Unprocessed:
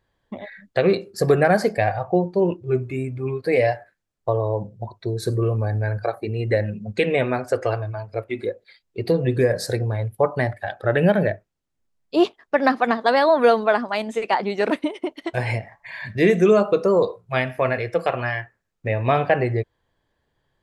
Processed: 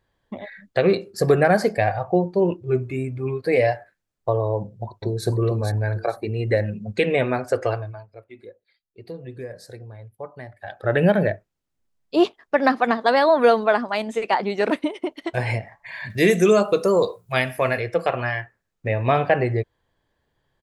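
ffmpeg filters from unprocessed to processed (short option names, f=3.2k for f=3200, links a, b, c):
-filter_complex "[0:a]asplit=2[a][b];[b]afade=t=in:st=4.57:d=0.01,afade=t=out:st=5.26:d=0.01,aecho=0:1:450|900|1350:0.630957|0.157739|0.0394348[c];[a][c]amix=inputs=2:normalize=0,asettb=1/sr,asplit=3[d][e][f];[d]atrim=end=16.104[g];[e]atrim=start=16.1:end=17.8,asetpts=PTS-STARTPTS,afade=t=in:d=0.004:c=qsin,afade=t=out:st=1.696:d=0.004:c=qsin,aemphasis=mode=production:type=75fm[h];[f]atrim=start=17.796[i];[g][h]acrossfade=d=0.004:c1=hsin:c2=qsin[j];[j][i]acrossfade=d=0.004:c1=qsin:c2=hsin,asplit=3[k][l][m];[k]atrim=end=8.1,asetpts=PTS-STARTPTS,afade=t=out:st=7.67:d=0.43:silence=0.158489[n];[l]atrim=start=8.1:end=10.52,asetpts=PTS-STARTPTS,volume=-16dB[o];[m]atrim=start=10.52,asetpts=PTS-STARTPTS,afade=t=in:d=0.43:silence=0.158489[p];[n][o][p]concat=n=3:v=0:a=1"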